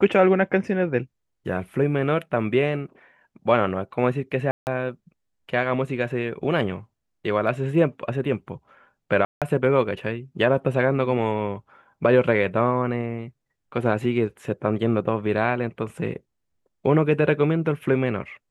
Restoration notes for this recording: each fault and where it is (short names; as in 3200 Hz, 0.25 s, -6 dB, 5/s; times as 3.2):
4.51–4.67 gap 0.159 s
9.25–9.42 gap 0.167 s